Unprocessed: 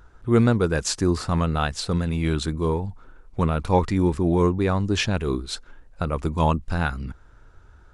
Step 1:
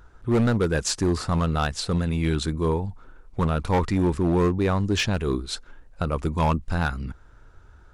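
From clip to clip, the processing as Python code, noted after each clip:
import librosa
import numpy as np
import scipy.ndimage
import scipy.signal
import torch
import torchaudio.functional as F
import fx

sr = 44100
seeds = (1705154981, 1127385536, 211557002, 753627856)

y = np.clip(x, -10.0 ** (-16.0 / 20.0), 10.0 ** (-16.0 / 20.0))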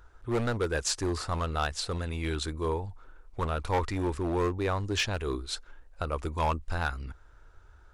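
y = fx.peak_eq(x, sr, hz=180.0, db=-13.0, octaves=1.1)
y = y * librosa.db_to_amplitude(-3.5)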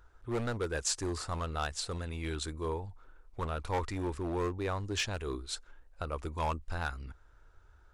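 y = fx.dynamic_eq(x, sr, hz=7800.0, q=1.5, threshold_db=-50.0, ratio=4.0, max_db=5)
y = y * librosa.db_to_amplitude(-5.0)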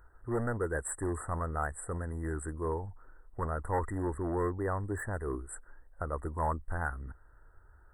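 y = fx.brickwall_bandstop(x, sr, low_hz=2000.0, high_hz=7600.0)
y = y * librosa.db_to_amplitude(1.5)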